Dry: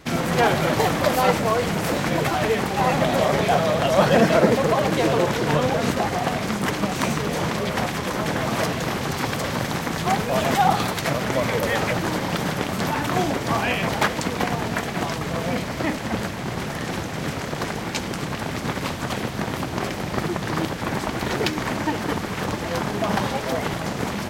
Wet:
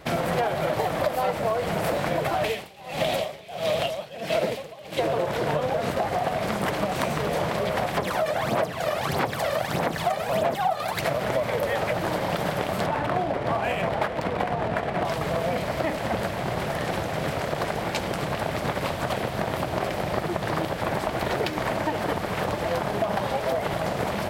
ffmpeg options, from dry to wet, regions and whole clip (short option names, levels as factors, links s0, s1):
-filter_complex "[0:a]asettb=1/sr,asplit=3[s0][s1][s2];[s0]atrim=end=2.444[s3];[s1]atrim=start=2.44:end=4.99,asetpts=PTS-STARTPTS,afade=t=in:d=0.004:c=qsin,afade=t=out:st=2.546:d=0.004:c=qsin,highshelf=f=2000:t=q:w=1.5:g=8,aeval=exprs='val(0)*pow(10,-28*(0.5-0.5*cos(2*PI*1.5*n/s))/20)':c=same[s4];[s2]atrim=start=4.986[s5];[s3][s4]acrossfade=d=0.004:c1=hsin:c2=qsin[s6];[s6][s5]acrossfade=d=0.004:c1=qsin:c2=hsin,asettb=1/sr,asplit=3[s7][s8][s9];[s7]atrim=end=7.974[s10];[s8]atrim=start=7.97:end=11.01,asetpts=PTS-STARTPTS,afade=t=in:d=0.004:c=qsin,afade=t=out:st=3.036:d=0.004:c=qsin,highpass=f=170:p=1,aphaser=in_gain=1:out_gain=1:delay=1.7:decay=0.64:speed=1.6:type=sinusoidal[s11];[s9]atrim=start=11.006[s12];[s10][s11]acrossfade=d=0.004:c1=hsin:c2=qsin[s13];[s13][s12]acrossfade=d=0.004:c1=qsin:c2=hsin,asettb=1/sr,asplit=3[s14][s15][s16];[s14]atrim=end=12.864[s17];[s15]atrim=start=12.86:end=15.05,asetpts=PTS-STARTPTS,afade=t=in:d=0.004:c=qsin,afade=t=out:st=2.186:d=0.004:c=qsin,aemphasis=mode=reproduction:type=cd,adynamicsmooth=sensitivity=6.5:basefreq=1800[s18];[s16]atrim=start=15.046[s19];[s17][s18]acrossfade=d=0.004:c1=hsin:c2=qsin[s20];[s20][s19]acrossfade=d=0.004:c1=qsin:c2=hsin,equalizer=f=250:t=o:w=0.67:g=-5,equalizer=f=630:t=o:w=0.67:g=8,equalizer=f=6300:t=o:w=0.67:g=-6,acompressor=threshold=0.0794:ratio=6"